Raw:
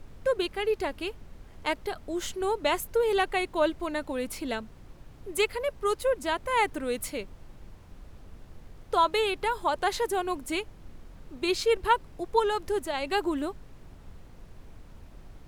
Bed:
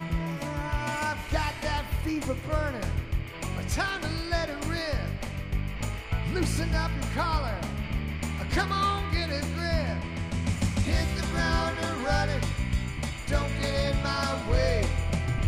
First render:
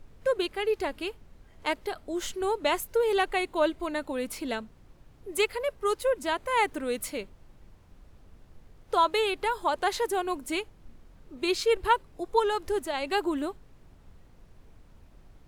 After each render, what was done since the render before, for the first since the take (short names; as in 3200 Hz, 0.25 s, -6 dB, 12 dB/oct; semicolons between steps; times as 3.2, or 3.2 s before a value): noise print and reduce 6 dB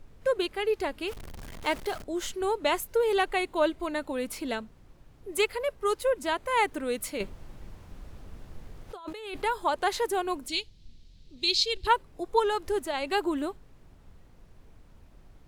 1.08–2.04 zero-crossing step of -37.5 dBFS; 7.2–9.42 negative-ratio compressor -37 dBFS; 10.48–11.87 EQ curve 110 Hz 0 dB, 1300 Hz -18 dB, 4100 Hz +12 dB, 11000 Hz -8 dB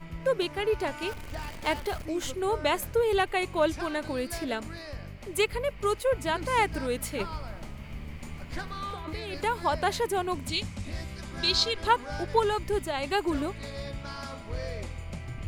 add bed -10.5 dB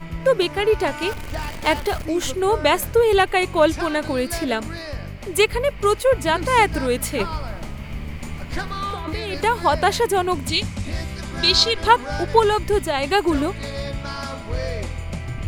gain +9 dB